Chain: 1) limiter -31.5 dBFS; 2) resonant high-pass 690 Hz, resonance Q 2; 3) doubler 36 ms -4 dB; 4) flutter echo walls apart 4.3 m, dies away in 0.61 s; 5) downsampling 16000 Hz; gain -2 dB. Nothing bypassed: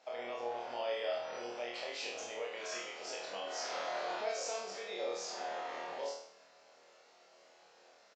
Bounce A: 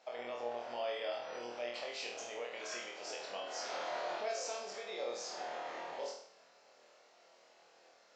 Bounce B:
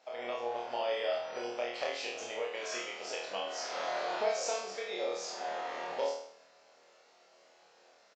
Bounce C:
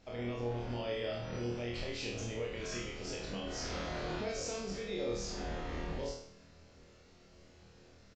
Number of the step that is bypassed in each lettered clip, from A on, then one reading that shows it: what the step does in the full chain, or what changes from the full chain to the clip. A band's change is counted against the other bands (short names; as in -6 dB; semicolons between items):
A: 3, loudness change -1.5 LU; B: 1, mean gain reduction 2.0 dB; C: 2, 250 Hz band +13.5 dB